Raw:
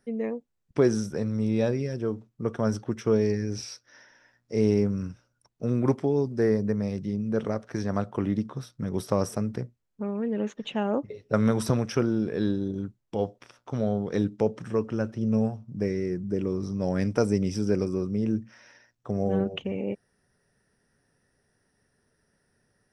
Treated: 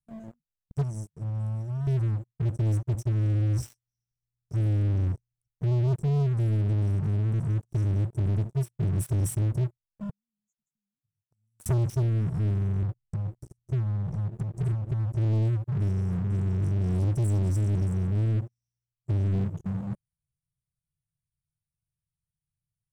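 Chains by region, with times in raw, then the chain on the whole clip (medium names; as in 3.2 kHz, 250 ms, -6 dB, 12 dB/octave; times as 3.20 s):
0.81–1.87 s: expander -21 dBFS + high-order bell 760 Hz +10.5 dB 1.1 oct + compression 2.5:1, threshold -36 dBFS
2.94–6.07 s: bass shelf 73 Hz +8 dB + transformer saturation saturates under 790 Hz
10.09–11.66 s: pre-emphasis filter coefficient 0.9 + compression 4:1, threshold -53 dBFS
12.82–15.15 s: bass shelf 290 Hz +11.5 dB + compression 16:1, threshold -32 dBFS
whole clip: Chebyshev band-stop 150–7400 Hz, order 4; treble shelf 2.6 kHz -6.5 dB; waveshaping leveller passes 5; trim -2.5 dB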